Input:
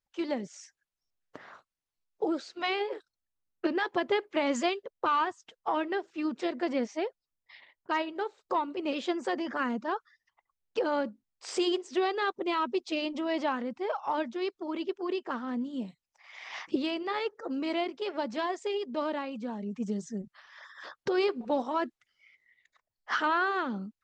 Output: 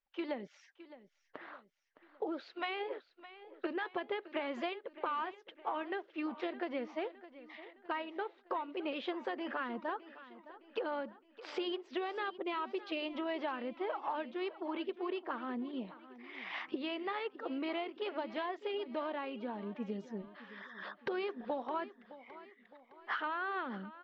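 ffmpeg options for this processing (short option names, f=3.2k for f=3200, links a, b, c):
-af "lowpass=f=3.5k:w=0.5412,lowpass=f=3.5k:w=1.3066,equalizer=f=97:w=0.56:g=-13,acompressor=threshold=-34dB:ratio=6,aecho=1:1:613|1226|1839|2452:0.158|0.0777|0.0381|0.0186"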